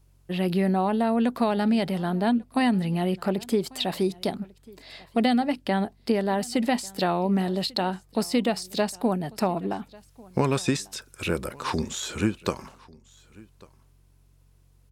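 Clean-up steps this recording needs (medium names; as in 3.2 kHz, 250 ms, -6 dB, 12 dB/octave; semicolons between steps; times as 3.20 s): de-hum 46.1 Hz, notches 3; inverse comb 1144 ms -24 dB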